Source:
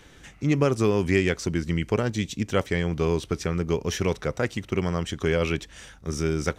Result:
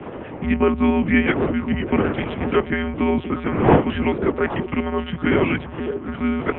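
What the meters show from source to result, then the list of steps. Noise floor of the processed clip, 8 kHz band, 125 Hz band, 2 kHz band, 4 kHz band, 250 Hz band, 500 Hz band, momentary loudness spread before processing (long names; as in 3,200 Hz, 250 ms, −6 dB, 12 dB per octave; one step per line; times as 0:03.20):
−34 dBFS, below −40 dB, +0.5 dB, +6.0 dB, 0.0 dB, +7.5 dB, +4.0 dB, 7 LU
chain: wind on the microphone 530 Hz −30 dBFS
on a send: echo through a band-pass that steps 266 ms, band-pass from 170 Hz, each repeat 1.4 octaves, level −4 dB
on the sum: one-pitch LPC vocoder at 8 kHz 170 Hz
single-sideband voice off tune −100 Hz 200–3,100 Hz
level +6 dB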